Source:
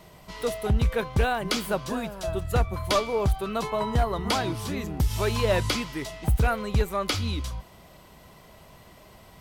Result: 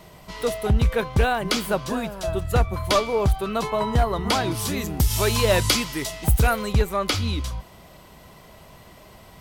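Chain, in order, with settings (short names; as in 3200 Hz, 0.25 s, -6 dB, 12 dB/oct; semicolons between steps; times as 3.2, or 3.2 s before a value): 4.51–6.73 high shelf 4600 Hz +10.5 dB; gain +3.5 dB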